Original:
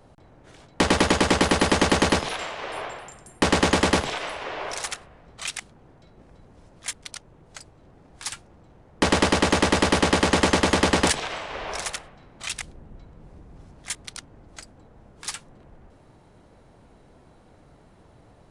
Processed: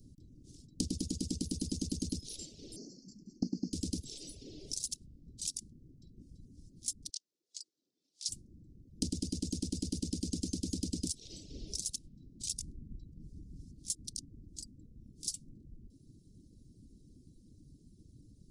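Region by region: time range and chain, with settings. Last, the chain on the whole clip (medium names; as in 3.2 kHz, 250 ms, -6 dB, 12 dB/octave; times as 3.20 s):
2.76–3.73 s: CVSD coder 32 kbps + brick-wall FIR band-stop 810–4200 Hz + resonant low shelf 140 Hz -12 dB, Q 3
7.10–8.29 s: band-pass 780–3300 Hz + tilt EQ +4.5 dB/octave
whole clip: Chebyshev band-stop 290–5000 Hz, order 3; compression 6:1, threshold -32 dBFS; reverb removal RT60 0.81 s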